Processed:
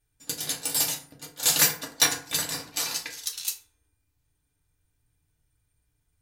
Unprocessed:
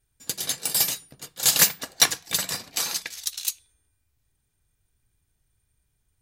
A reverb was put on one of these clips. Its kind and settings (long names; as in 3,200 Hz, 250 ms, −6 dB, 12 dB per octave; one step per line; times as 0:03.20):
feedback delay network reverb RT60 0.47 s, low-frequency decay 1×, high-frequency decay 0.55×, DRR 0 dB
level −4 dB